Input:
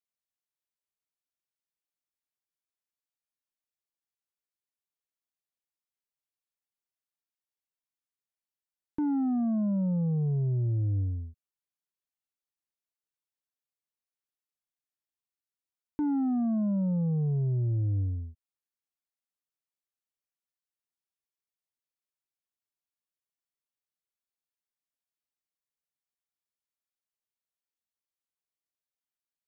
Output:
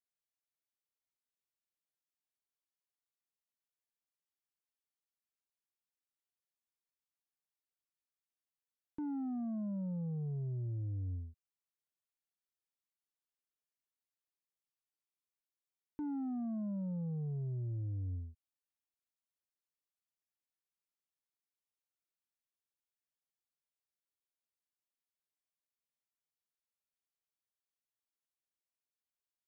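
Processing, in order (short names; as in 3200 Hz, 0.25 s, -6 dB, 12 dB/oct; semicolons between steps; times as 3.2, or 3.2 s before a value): limiter -29.5 dBFS, peak gain reduction 4.5 dB; gain -6.5 dB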